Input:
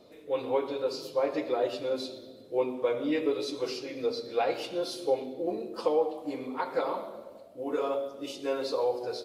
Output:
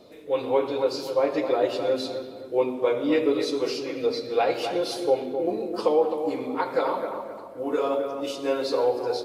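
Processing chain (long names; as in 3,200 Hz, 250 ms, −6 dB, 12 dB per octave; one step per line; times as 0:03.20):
bucket-brigade delay 260 ms, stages 4,096, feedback 37%, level −8 dB
level +5 dB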